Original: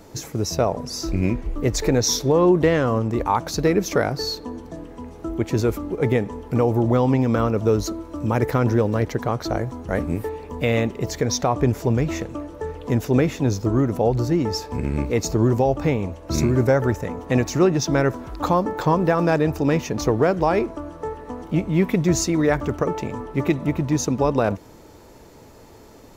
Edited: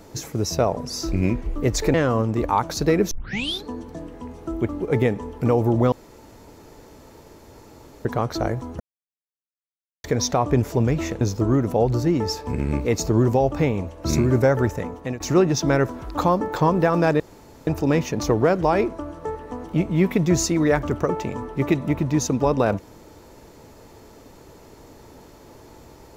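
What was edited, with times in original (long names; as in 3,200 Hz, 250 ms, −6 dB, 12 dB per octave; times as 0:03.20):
0:01.94–0:02.71: remove
0:03.88: tape start 0.53 s
0:05.46–0:05.79: remove
0:07.02–0:09.15: fill with room tone
0:09.90–0:11.14: silence
0:12.31–0:13.46: remove
0:17.07–0:17.45: fade out, to −17.5 dB
0:19.45: splice in room tone 0.47 s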